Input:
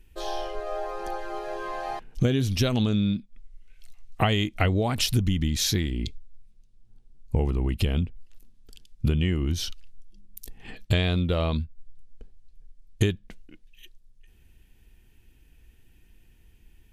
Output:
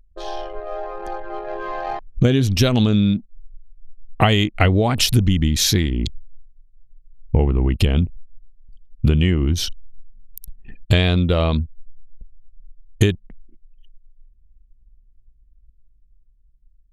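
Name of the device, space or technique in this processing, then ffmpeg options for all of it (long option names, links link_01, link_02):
voice memo with heavy noise removal: -af "anlmdn=3.98,dynaudnorm=framelen=290:gausssize=11:maxgain=5.5dB,volume=2.5dB"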